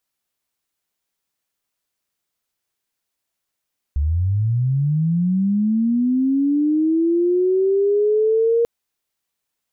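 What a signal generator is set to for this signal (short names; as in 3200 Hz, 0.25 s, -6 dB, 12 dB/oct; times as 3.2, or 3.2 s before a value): chirp linear 68 Hz -> 470 Hz -16 dBFS -> -13.5 dBFS 4.69 s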